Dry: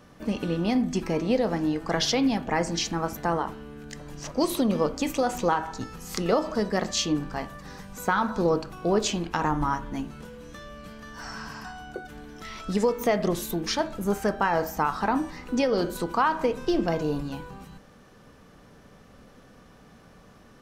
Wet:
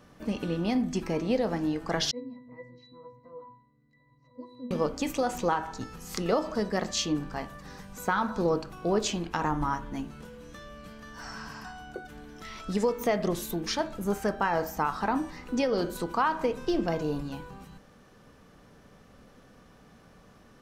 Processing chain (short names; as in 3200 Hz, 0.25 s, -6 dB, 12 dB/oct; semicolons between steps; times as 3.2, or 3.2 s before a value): 2.11–4.71 octave resonator B, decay 0.44 s; gain -3 dB